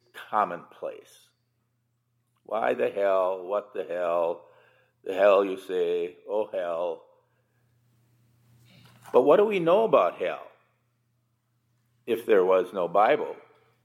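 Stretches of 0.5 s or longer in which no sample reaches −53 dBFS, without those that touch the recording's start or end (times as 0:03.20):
0:01.27–0:02.46
0:07.13–0:08.50
0:10.57–0:12.07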